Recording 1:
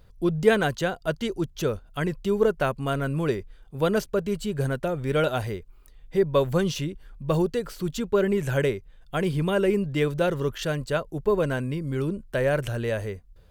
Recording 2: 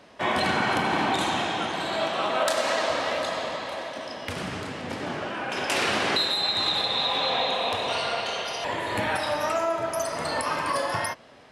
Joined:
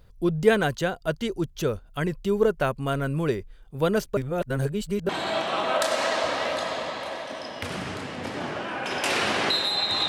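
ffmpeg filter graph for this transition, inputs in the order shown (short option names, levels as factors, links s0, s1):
-filter_complex "[0:a]apad=whole_dur=10.08,atrim=end=10.08,asplit=2[s0][s1];[s0]atrim=end=4.172[s2];[s1]atrim=start=4.168:end=5.092,asetpts=PTS-STARTPTS,areverse[s3];[1:a]atrim=start=1.748:end=6.74[s4];[s2][s3]acrossfade=d=0.004:c1=hsin:c2=hsin[s5];[s5][s4]acrossfade=d=0.004:c1=hsin:c2=hsin"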